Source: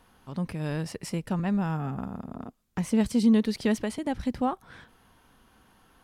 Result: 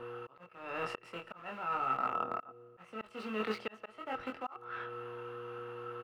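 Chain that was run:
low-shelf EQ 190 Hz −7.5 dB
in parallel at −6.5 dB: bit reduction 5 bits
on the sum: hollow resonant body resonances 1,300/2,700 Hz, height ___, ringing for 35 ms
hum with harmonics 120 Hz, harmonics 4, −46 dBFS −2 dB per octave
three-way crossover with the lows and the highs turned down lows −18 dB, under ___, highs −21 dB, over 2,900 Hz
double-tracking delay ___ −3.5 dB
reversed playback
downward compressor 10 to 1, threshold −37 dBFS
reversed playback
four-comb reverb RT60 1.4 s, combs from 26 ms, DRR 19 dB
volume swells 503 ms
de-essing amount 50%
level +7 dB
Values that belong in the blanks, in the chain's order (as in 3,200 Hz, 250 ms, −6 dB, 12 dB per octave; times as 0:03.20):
17 dB, 420 Hz, 23 ms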